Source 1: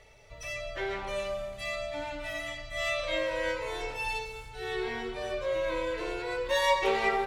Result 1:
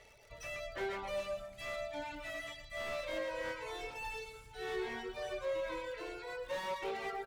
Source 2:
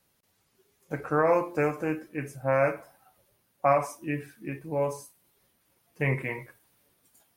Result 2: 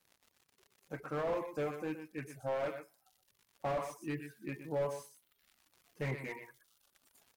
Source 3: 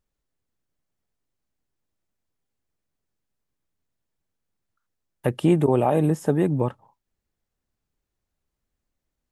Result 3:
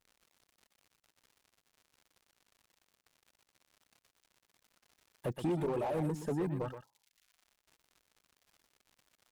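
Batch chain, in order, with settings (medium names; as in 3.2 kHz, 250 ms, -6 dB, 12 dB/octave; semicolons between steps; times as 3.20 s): saturation -21 dBFS; bass shelf 150 Hz -5 dB; gain riding 2 s; Chebyshev shaper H 3 -25 dB, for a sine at -19.5 dBFS; crackle 110 per s -42 dBFS; reverb removal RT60 1 s; on a send: delay 122 ms -11 dB; on the sum: slew-rate limiter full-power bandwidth 27 Hz; trim -3.5 dB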